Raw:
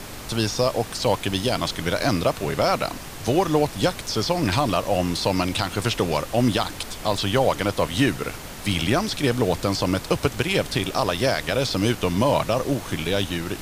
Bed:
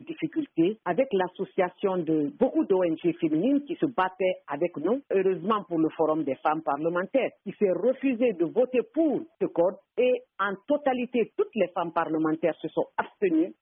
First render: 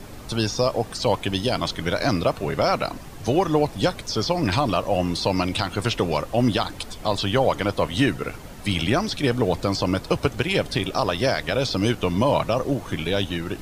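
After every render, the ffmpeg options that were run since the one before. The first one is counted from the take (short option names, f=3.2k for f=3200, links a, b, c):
-af "afftdn=nr=9:nf=-36"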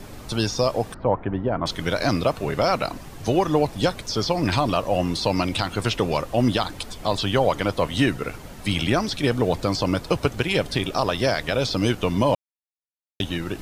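-filter_complex "[0:a]asettb=1/sr,asplit=3[a][b][c];[a]atrim=end=0.944[d];[b]atrim=start=0.94:end=1.66,asetpts=PTS-STARTPTS,afade=t=in:d=0.004:c=qsin,afade=t=out:st=0.716:d=0.004:c=qsin,lowpass=f=1.6k:w=0.5412,lowpass=f=1.6k:w=1.3066[e];[c]atrim=start=1.656[f];[d][e]acrossfade=d=0.004:c1=hsin:c2=qsin[g];[g][f]acrossfade=d=0.004:c1=qsin:c2=hsin,asplit=3[h][i][j];[h]atrim=end=12.35,asetpts=PTS-STARTPTS,afade=t=out:st=12.346:d=0.004:c=hsin[k];[i]atrim=start=12.35:end=13.2,asetpts=PTS-STARTPTS,volume=0[l];[j]atrim=start=13.2,asetpts=PTS-STARTPTS,afade=t=in:d=0.004:c=hsin[m];[k][l][m]concat=n=3:v=0:a=1"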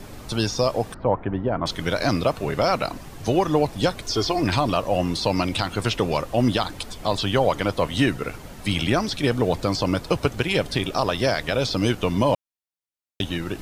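-filter_complex "[0:a]asettb=1/sr,asplit=3[a][b][c];[a]atrim=end=4.024[d];[b]atrim=start=4.02:end=4.43,asetpts=PTS-STARTPTS,afade=t=in:d=0.004:c=qsin,afade=t=out:st=0.406:d=0.004:c=qsin,aecho=1:1:2.8:0.65,atrim=end_sample=18081[e];[c]atrim=start=4.426[f];[d][e]acrossfade=d=0.004:c1=hsin:c2=qsin[g];[g][f]acrossfade=d=0.004:c1=qsin:c2=hsin"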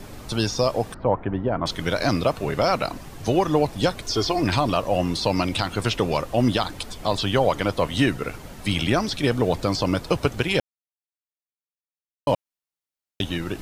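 -filter_complex "[0:a]asplit=3[a][b][c];[a]atrim=end=10.6,asetpts=PTS-STARTPTS,afade=t=out:st=10.596:d=0.004:c=hsin[d];[b]atrim=start=10.6:end=12.27,asetpts=PTS-STARTPTS,volume=0[e];[c]atrim=start=12.27,asetpts=PTS-STARTPTS,afade=t=in:d=0.004:c=hsin[f];[d][e][f]concat=n=3:v=0:a=1"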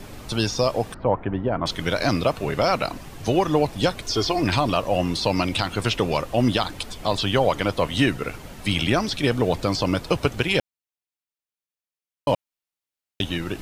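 -af "equalizer=f=2.7k:w=1.6:g=2.5"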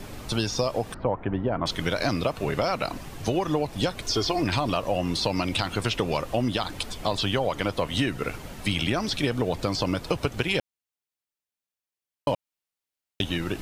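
-af "acompressor=threshold=-21dB:ratio=6"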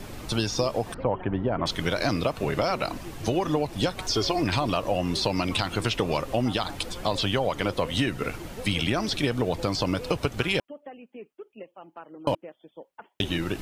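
-filter_complex "[1:a]volume=-17.5dB[a];[0:a][a]amix=inputs=2:normalize=0"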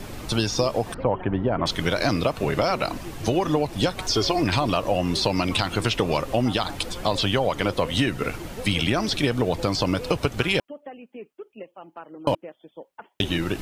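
-af "volume=3dB"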